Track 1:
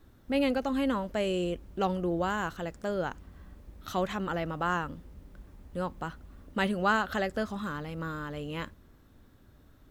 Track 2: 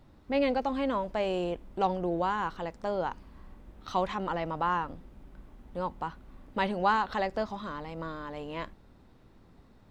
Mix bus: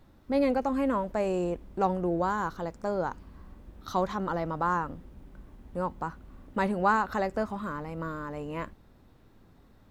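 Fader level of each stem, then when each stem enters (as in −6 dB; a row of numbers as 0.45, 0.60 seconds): −6.0, −1.5 decibels; 0.00, 0.00 seconds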